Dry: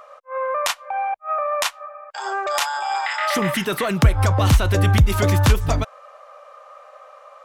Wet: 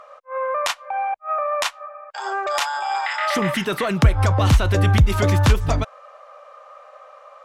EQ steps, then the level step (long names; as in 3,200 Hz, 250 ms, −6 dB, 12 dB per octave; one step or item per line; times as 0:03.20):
high-shelf EQ 11,000 Hz −12 dB
0.0 dB